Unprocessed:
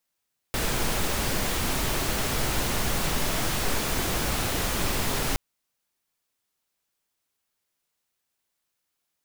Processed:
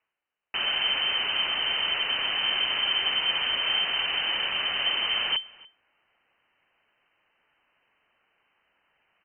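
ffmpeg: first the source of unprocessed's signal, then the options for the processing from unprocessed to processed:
-f lavfi -i "anoisesrc=c=pink:a=0.257:d=4.82:r=44100:seed=1"
-filter_complex "[0:a]areverse,acompressor=mode=upward:threshold=0.00501:ratio=2.5,areverse,lowpass=f=2600:t=q:w=0.5098,lowpass=f=2600:t=q:w=0.6013,lowpass=f=2600:t=q:w=0.9,lowpass=f=2600:t=q:w=2.563,afreqshift=-3100,asplit=2[s0][s1];[s1]adelay=285.7,volume=0.0794,highshelf=f=4000:g=-6.43[s2];[s0][s2]amix=inputs=2:normalize=0"

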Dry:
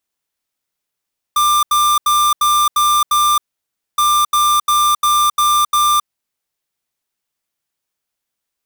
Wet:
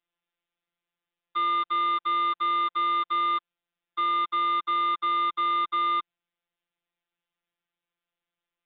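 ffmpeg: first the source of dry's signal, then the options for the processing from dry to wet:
-f lavfi -i "aevalsrc='0.224*(2*lt(mod(1190*t,1),0.5)-1)*clip(min(mod(mod(t,2.62),0.35),0.27-mod(mod(t,2.62),0.35))/0.005,0,1)*lt(mod(t,2.62),2.1)':d=5.24:s=44100"
-af "aresample=8000,asoftclip=type=tanh:threshold=0.0708,aresample=44100,afftfilt=real='hypot(re,im)*cos(PI*b)':imag='0':win_size=1024:overlap=0.75"

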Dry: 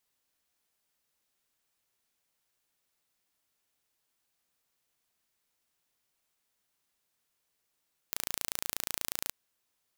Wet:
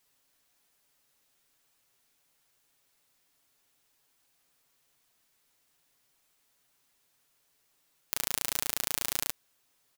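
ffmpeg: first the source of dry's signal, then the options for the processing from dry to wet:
-f lavfi -i "aevalsrc='0.531*eq(mod(n,1558),0)':d=1.17:s=44100"
-filter_complex "[0:a]aecho=1:1:7.2:0.42,asplit=2[s0][s1];[s1]alimiter=limit=0.178:level=0:latency=1:release=12,volume=1.26[s2];[s0][s2]amix=inputs=2:normalize=0"

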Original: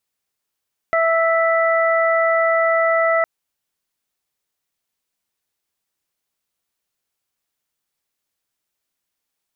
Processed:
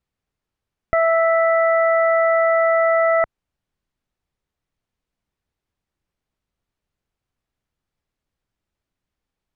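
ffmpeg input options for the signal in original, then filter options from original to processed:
-f lavfi -i "aevalsrc='0.158*sin(2*PI*659*t)+0.1*sin(2*PI*1318*t)+0.0944*sin(2*PI*1977*t)':d=2.31:s=44100"
-af "aemphasis=mode=reproduction:type=riaa"

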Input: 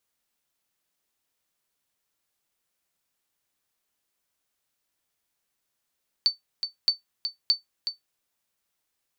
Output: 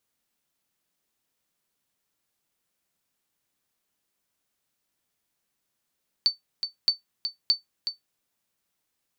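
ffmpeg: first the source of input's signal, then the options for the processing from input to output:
-f lavfi -i "aevalsrc='0.251*(sin(2*PI*4530*mod(t,0.62))*exp(-6.91*mod(t,0.62)/0.14)+0.376*sin(2*PI*4530*max(mod(t,0.62)-0.37,0))*exp(-6.91*max(mod(t,0.62)-0.37,0)/0.14))':d=1.86:s=44100"
-af "equalizer=f=190:t=o:w=1.9:g=5"

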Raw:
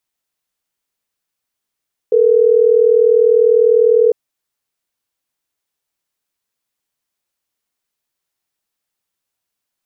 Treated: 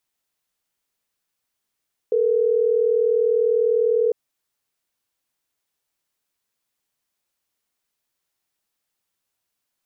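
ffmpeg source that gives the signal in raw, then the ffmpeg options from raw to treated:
-f lavfi -i "aevalsrc='0.299*(sin(2*PI*440*t)+sin(2*PI*480*t))*clip(min(mod(t,6),2-mod(t,6))/0.005,0,1)':d=3.12:s=44100"
-af "alimiter=limit=0.211:level=0:latency=1:release=63"

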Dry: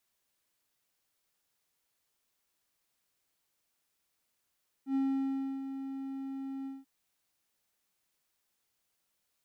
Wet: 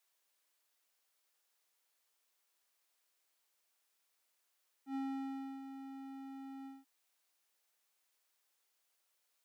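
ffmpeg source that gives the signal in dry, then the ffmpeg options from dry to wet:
-f lavfi -i "aevalsrc='0.0596*(1-4*abs(mod(270*t+0.25,1)-0.5))':d=1.988:s=44100,afade=t=in:d=0.089,afade=t=out:st=0.089:d=0.662:silence=0.316,afade=t=out:st=1.8:d=0.188"
-af "highpass=450"

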